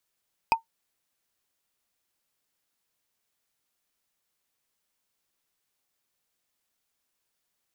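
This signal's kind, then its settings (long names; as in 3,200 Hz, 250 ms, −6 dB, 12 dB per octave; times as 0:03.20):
struck wood, lowest mode 908 Hz, decay 0.12 s, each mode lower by 5 dB, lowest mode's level −13 dB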